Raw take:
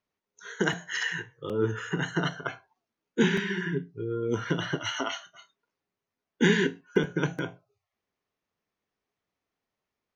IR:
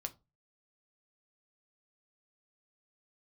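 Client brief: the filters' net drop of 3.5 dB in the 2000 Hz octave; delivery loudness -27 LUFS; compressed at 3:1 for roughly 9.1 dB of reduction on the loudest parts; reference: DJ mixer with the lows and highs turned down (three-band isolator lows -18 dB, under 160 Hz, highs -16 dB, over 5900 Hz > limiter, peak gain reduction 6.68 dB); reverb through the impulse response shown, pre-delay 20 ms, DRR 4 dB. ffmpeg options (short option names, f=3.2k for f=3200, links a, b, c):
-filter_complex "[0:a]equalizer=f=2k:t=o:g=-4.5,acompressor=threshold=-30dB:ratio=3,asplit=2[a][b];[1:a]atrim=start_sample=2205,adelay=20[c];[b][c]afir=irnorm=-1:irlink=0,volume=-2dB[d];[a][d]amix=inputs=2:normalize=0,acrossover=split=160 5900:gain=0.126 1 0.158[e][f][g];[e][f][g]amix=inputs=3:normalize=0,volume=9.5dB,alimiter=limit=-15dB:level=0:latency=1"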